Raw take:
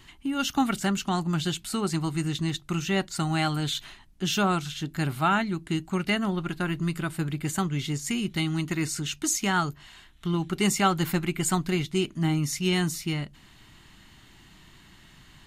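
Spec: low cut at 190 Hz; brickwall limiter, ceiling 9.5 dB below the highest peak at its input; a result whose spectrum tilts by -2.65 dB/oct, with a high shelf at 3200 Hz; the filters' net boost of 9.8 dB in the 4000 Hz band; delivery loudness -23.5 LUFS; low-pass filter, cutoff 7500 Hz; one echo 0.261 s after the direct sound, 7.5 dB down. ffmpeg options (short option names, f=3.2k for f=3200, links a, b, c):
-af "highpass=190,lowpass=7.5k,highshelf=f=3.2k:g=7.5,equalizer=f=4k:t=o:g=8,alimiter=limit=-14.5dB:level=0:latency=1,aecho=1:1:261:0.422,volume=2.5dB"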